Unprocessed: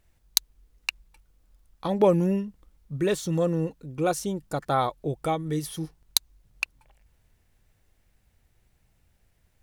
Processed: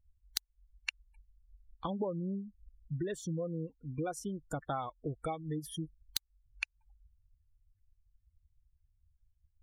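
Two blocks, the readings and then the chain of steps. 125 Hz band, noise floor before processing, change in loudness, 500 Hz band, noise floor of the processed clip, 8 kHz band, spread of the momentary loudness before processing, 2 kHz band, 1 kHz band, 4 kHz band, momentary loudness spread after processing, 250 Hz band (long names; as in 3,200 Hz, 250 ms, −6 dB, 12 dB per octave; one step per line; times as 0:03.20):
−9.5 dB, −67 dBFS, −12.0 dB, −14.0 dB, −77 dBFS, −13.0 dB, 11 LU, −9.0 dB, −12.0 dB, −12.5 dB, 5 LU, −11.0 dB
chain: spectral dynamics exaggerated over time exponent 1.5
downward compressor 6 to 1, threshold −40 dBFS, peak gain reduction 22 dB
gate on every frequency bin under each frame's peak −30 dB strong
level +5 dB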